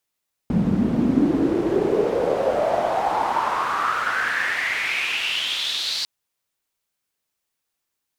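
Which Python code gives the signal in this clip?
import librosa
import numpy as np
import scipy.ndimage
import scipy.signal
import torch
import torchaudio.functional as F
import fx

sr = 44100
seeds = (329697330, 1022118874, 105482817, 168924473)

y = fx.riser_noise(sr, seeds[0], length_s=5.55, colour='pink', kind='bandpass', start_hz=180.0, end_hz=4400.0, q=5.3, swell_db=-7.0, law='exponential')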